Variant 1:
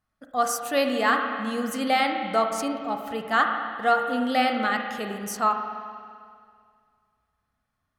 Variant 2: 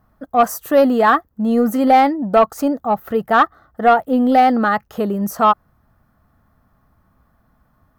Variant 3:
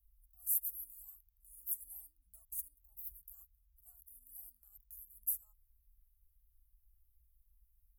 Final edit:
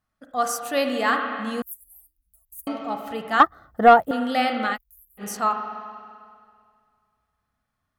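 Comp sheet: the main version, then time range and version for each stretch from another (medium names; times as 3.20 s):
1
1.62–2.67 s: from 3
3.40–4.11 s: from 2
4.75–5.20 s: from 3, crossfade 0.06 s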